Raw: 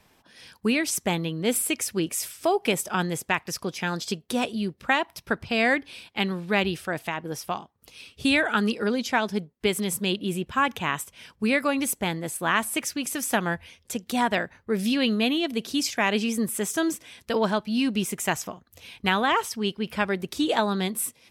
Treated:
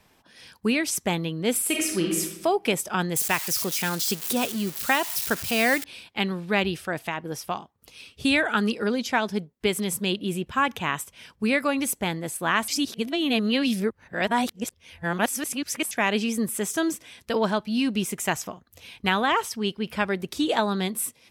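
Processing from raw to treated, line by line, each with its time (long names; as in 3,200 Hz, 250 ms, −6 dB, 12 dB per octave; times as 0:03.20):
0:01.61–0:02.20: thrown reverb, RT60 0.93 s, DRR 0 dB
0:03.16–0:05.84: spike at every zero crossing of −21 dBFS
0:12.68–0:15.91: reverse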